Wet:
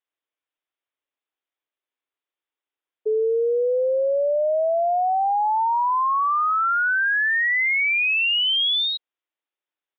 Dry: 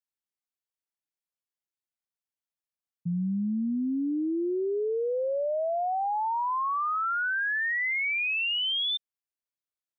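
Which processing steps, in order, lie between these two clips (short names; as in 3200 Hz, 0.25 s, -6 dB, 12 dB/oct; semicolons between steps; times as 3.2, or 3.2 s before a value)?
frequency shift +260 Hz; downsampling 8000 Hz; gain +7.5 dB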